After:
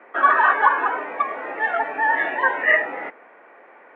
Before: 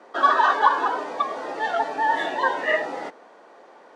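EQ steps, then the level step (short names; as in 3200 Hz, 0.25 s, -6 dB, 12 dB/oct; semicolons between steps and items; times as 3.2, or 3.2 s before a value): HPF 190 Hz 6 dB/oct; dynamic EQ 6800 Hz, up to +5 dB, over -50 dBFS, Q 2.4; EQ curve 970 Hz 0 dB, 2300 Hz +10 dB, 4500 Hz -26 dB; 0.0 dB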